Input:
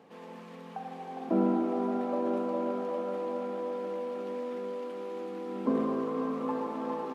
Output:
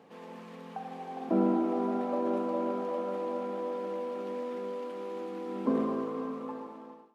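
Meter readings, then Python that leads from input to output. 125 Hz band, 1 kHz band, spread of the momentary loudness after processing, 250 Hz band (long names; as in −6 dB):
−0.5 dB, −0.5 dB, 15 LU, −0.5 dB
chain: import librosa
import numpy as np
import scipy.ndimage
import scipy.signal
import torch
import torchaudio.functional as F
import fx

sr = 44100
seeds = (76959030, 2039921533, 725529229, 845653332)

p1 = fx.fade_out_tail(x, sr, length_s=1.42)
y = p1 + fx.echo_feedback(p1, sr, ms=100, feedback_pct=47, wet_db=-18.5, dry=0)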